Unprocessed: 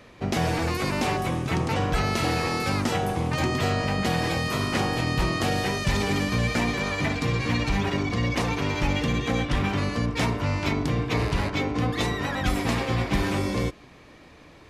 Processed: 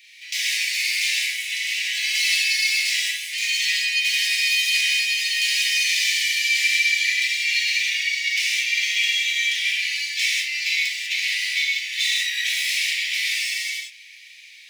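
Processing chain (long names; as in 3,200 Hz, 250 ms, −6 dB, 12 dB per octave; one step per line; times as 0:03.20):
running median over 3 samples
Butterworth high-pass 2,000 Hz 72 dB per octave
reverb whose tail is shaped and stops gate 220 ms flat, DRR −7 dB
level +5.5 dB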